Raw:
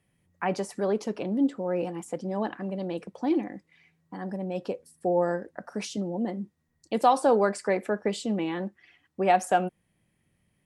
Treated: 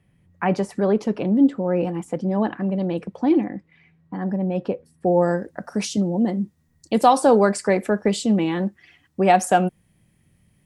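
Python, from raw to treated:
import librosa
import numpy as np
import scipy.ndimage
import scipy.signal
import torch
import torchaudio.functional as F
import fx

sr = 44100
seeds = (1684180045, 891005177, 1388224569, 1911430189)

y = fx.bass_treble(x, sr, bass_db=7, treble_db=fx.steps((0.0, -7.0), (3.43, -14.0), (5.06, 4.0)))
y = F.gain(torch.from_numpy(y), 5.5).numpy()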